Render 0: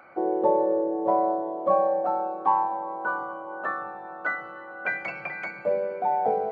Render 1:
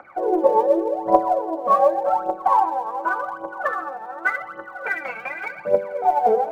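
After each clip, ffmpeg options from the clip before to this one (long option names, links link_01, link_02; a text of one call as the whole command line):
ffmpeg -i in.wav -af "lowpass=frequency=1100:poles=1,lowshelf=frequency=410:gain=-11,aphaser=in_gain=1:out_gain=1:delay=4.6:decay=0.75:speed=0.87:type=triangular,volume=6.5dB" out.wav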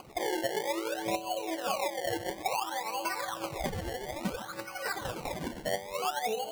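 ffmpeg -i in.wav -af "equalizer=frequency=110:width_type=o:width=2.2:gain=12,acrusher=samples=24:mix=1:aa=0.000001:lfo=1:lforange=24:lforate=0.58,acompressor=threshold=-25dB:ratio=5,volume=-5.5dB" out.wav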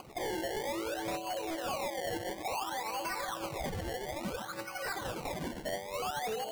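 ffmpeg -i in.wav -af "volume=33dB,asoftclip=hard,volume=-33dB" out.wav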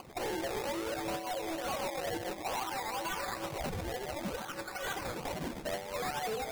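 ffmpeg -i in.wav -af "acrusher=samples=12:mix=1:aa=0.000001:lfo=1:lforange=7.2:lforate=2.2" out.wav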